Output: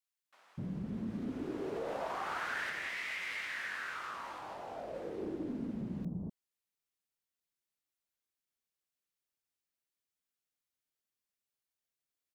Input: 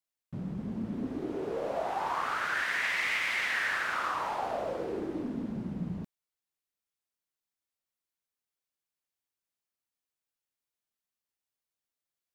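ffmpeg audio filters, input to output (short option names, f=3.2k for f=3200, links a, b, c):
-filter_complex "[0:a]acompressor=threshold=-34dB:ratio=2.5,asplit=3[a][b][c];[a]afade=t=out:st=2.69:d=0.02[d];[b]flanger=delay=19.5:depth=2.9:speed=1.2,afade=t=in:st=2.69:d=0.02,afade=t=out:st=4.93:d=0.02[e];[c]afade=t=in:st=4.93:d=0.02[f];[d][e][f]amix=inputs=3:normalize=0,acrossover=split=890[g][h];[g]adelay=250[i];[i][h]amix=inputs=2:normalize=0,volume=-1.5dB"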